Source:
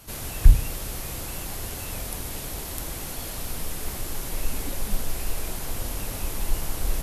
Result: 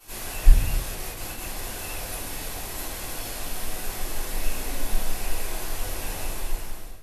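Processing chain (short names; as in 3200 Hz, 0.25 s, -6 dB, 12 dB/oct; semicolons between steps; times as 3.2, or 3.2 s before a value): ending faded out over 0.86 s; low shelf 240 Hz -12 dB; 0.94–1.54 gate with hold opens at -25 dBFS; shoebox room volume 92 m³, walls mixed, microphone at 3.5 m; Doppler distortion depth 0.44 ms; gain -10 dB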